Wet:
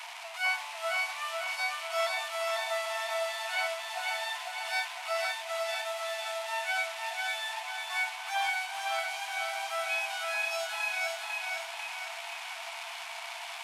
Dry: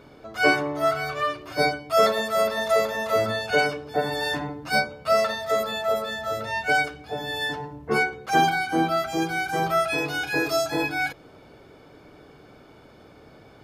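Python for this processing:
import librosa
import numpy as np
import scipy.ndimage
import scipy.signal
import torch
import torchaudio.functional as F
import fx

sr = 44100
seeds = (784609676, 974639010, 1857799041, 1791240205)

p1 = fx.delta_mod(x, sr, bps=64000, step_db=-25.0)
p2 = scipy.signal.sosfilt(scipy.signal.cheby1(6, 9, 660.0, 'highpass', fs=sr, output='sos'), p1)
p3 = p2 + fx.echo_feedback(p2, sr, ms=498, feedback_pct=52, wet_db=-3, dry=0)
y = p3 * 10.0 ** (-4.0 / 20.0)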